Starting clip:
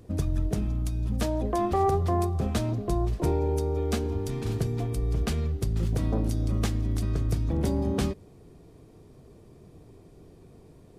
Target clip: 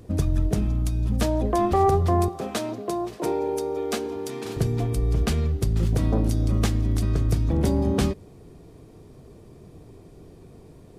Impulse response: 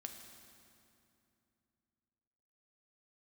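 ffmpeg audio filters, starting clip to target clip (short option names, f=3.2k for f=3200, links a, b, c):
-filter_complex "[0:a]asettb=1/sr,asplit=3[a][b][c];[a]atrim=end=2.284[d];[b]atrim=start=2.28:end=4.57,asetpts=PTS-STARTPTS,afade=t=in:d=0.004:c=qsin,afade=t=out:st=2.286:d=0.004:c=qsin,highpass=320[e];[c]atrim=start=4.566[f];[d][e]acrossfade=d=0.004:c1=hsin:c2=qsin[g];[g][f]acrossfade=d=0.004:c1=qsin:c2=hsin,volume=4.5dB"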